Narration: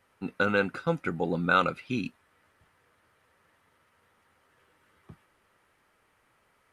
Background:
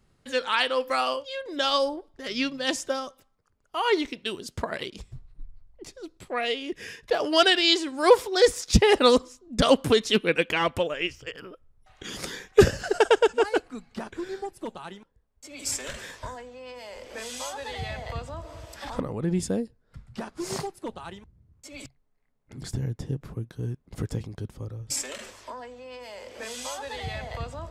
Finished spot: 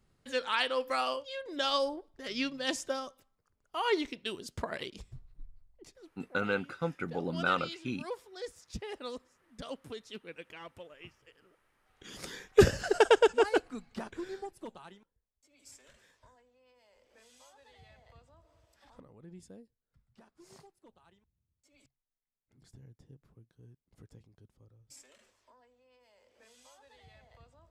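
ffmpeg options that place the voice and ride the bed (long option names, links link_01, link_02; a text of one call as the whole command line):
ffmpeg -i stem1.wav -i stem2.wav -filter_complex "[0:a]adelay=5950,volume=-6dB[link_01];[1:a]volume=14dB,afade=type=out:start_time=5.33:duration=0.99:silence=0.141254,afade=type=in:start_time=11.78:duration=0.99:silence=0.1,afade=type=out:start_time=13.66:duration=1.82:silence=0.0841395[link_02];[link_01][link_02]amix=inputs=2:normalize=0" out.wav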